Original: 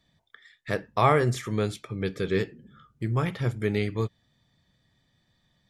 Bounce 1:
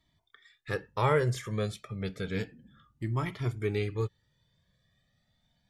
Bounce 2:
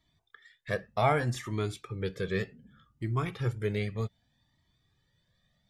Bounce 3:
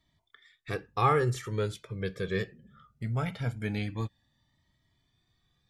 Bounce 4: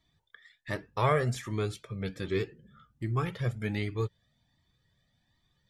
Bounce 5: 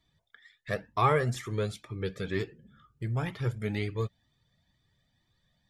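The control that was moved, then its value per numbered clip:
cascading flanger, rate: 0.31, 0.65, 0.21, 1.3, 2.1 Hz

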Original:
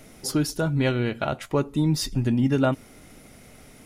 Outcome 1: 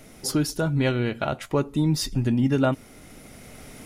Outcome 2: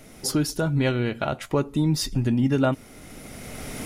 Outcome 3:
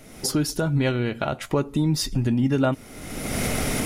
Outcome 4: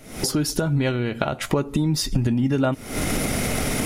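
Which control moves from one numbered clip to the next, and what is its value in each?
recorder AGC, rising by: 5.5, 14, 35, 90 dB/s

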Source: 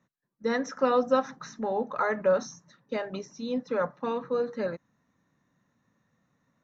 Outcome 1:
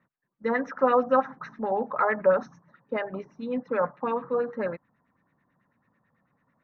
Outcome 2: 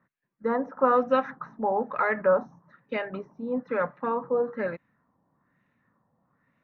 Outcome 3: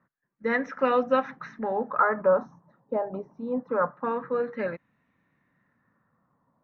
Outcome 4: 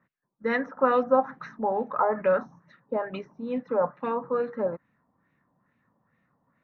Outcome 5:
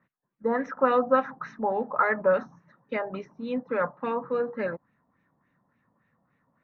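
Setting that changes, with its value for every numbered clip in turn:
LFO low-pass, rate: 9.1, 1.1, 0.25, 2.3, 3.5 Hz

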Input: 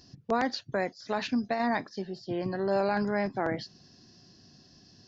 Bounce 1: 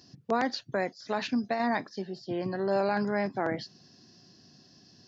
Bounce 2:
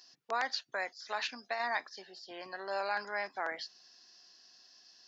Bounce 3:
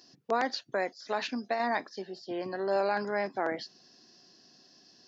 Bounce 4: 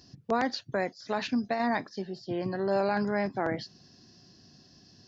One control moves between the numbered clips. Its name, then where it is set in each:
HPF, cutoff: 110, 980, 340, 43 Hz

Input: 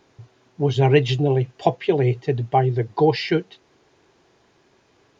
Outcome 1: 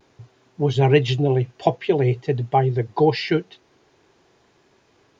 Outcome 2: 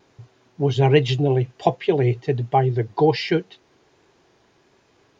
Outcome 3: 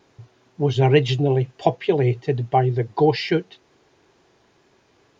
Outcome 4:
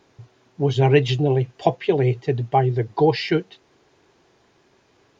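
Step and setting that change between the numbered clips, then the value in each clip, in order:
vibrato, rate: 0.5, 1.3, 2.2, 5.9 Hz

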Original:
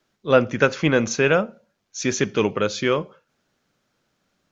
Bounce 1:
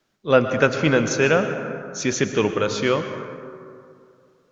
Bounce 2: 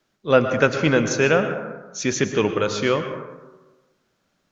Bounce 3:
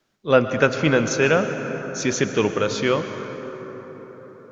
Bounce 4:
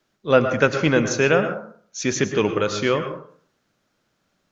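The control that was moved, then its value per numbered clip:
plate-style reverb, RT60: 2.4, 1.2, 5.1, 0.52 s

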